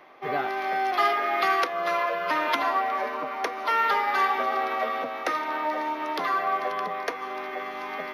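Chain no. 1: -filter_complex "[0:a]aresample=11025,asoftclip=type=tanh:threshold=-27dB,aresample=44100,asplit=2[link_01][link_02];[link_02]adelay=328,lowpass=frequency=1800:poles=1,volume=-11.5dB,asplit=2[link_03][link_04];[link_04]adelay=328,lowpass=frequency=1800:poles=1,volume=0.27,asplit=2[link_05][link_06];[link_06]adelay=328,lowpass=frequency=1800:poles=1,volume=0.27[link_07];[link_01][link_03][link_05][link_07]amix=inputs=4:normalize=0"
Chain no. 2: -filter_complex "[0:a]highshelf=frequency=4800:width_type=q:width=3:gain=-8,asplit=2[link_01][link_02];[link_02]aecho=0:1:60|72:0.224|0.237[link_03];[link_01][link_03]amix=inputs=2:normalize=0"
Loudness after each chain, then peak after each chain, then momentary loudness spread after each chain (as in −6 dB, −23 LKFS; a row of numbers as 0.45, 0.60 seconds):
−31.0, −25.5 LKFS; −23.0, −8.0 dBFS; 6, 9 LU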